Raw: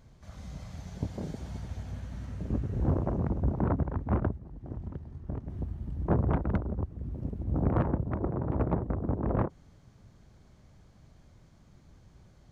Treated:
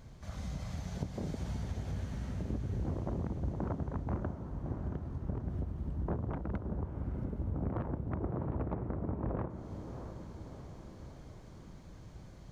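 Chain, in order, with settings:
downward compressor, threshold −38 dBFS, peak gain reduction 15.5 dB
on a send: feedback delay with all-pass diffusion 664 ms, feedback 58%, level −8.5 dB
on the sum: level +4 dB

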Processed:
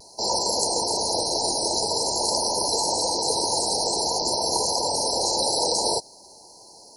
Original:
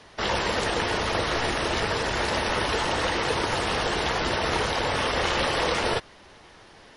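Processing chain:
brick-wall band-stop 1,000–4,000 Hz
RIAA equalisation recording
pitch vibrato 0.49 Hz 20 cents
level +3 dB

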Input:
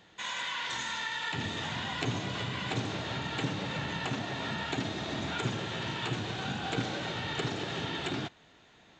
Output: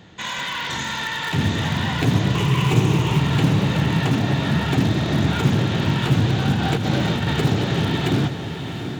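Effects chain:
0:02.35–0:03.20: EQ curve with evenly spaced ripples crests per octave 0.72, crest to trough 12 dB
in parallel at −9.5 dB: wrap-around overflow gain 27 dB
on the sum: parametric band 110 Hz +12.5 dB 2.9 octaves
0:06.55–0:07.31: compressor whose output falls as the input rises −27 dBFS, ratio −1
mains-hum notches 60/120 Hz
feedback delay with all-pass diffusion 711 ms, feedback 43%, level −8 dB
highs frequency-modulated by the lows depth 0.15 ms
level +5.5 dB

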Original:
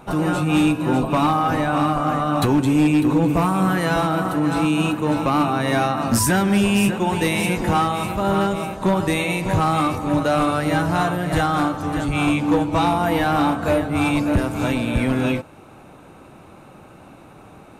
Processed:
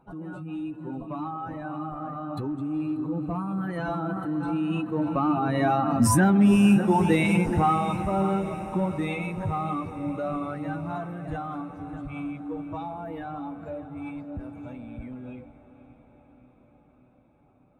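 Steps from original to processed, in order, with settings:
expanding power law on the bin magnitudes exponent 1.6
source passing by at 0:06.69, 7 m/s, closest 6.7 metres
feedback delay with all-pass diffusion 501 ms, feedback 66%, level −15 dB

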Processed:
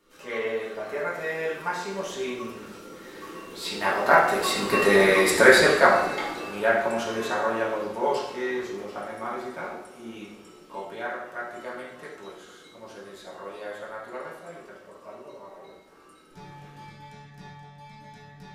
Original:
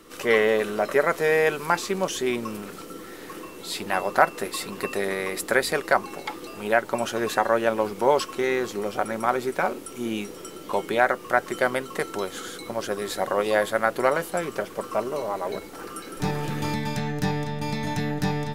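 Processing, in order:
source passing by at 0:05.10, 8 m/s, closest 4.1 metres
convolution reverb, pre-delay 3 ms, DRR −7 dB
level +2.5 dB

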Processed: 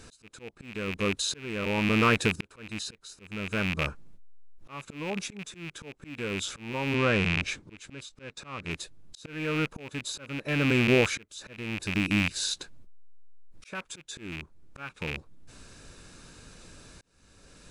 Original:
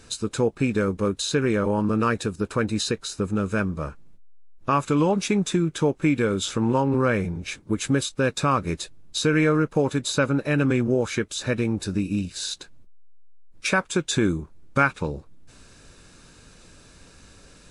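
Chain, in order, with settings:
loose part that buzzes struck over −30 dBFS, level −13 dBFS
volume swells 800 ms
0:06.95–0:08.71: Bessel low-pass filter 7,500 Hz, order 4

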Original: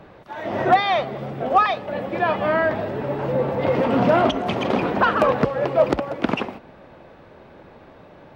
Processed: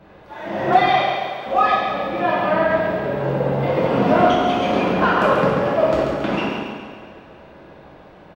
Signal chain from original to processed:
0:00.92–0:01.45: high-pass filter 310 Hz → 1,300 Hz 12 dB per octave
repeating echo 138 ms, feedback 53%, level −6 dB
coupled-rooms reverb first 0.96 s, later 3.1 s, DRR −7 dB
level −6.5 dB

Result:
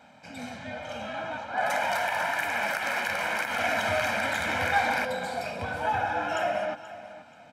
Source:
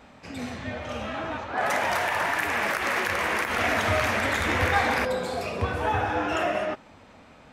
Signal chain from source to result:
high-pass filter 160 Hz 12 dB per octave
comb filter 1.3 ms, depth 74%
on a send: repeating echo 482 ms, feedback 27%, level −15.5 dB
on the sum: level −4.5 dB

